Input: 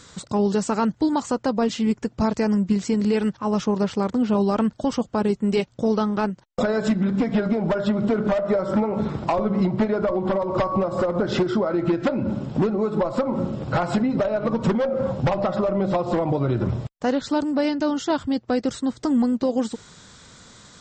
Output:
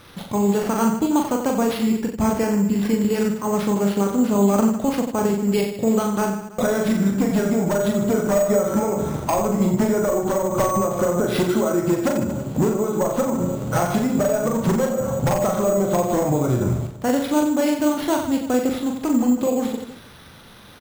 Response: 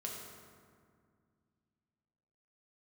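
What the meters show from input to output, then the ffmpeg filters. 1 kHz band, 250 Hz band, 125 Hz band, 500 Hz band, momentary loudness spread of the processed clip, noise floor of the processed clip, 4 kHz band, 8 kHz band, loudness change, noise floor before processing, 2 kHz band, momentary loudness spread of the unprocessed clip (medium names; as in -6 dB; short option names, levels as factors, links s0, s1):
+2.0 dB, +2.0 dB, +2.0 dB, +2.5 dB, 4 LU, -41 dBFS, +1.0 dB, no reading, +2.0 dB, -52 dBFS, +2.0 dB, 3 LU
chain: -af "aecho=1:1:40|90|152.5|230.6|328.3:0.631|0.398|0.251|0.158|0.1,acrusher=samples=6:mix=1:aa=0.000001"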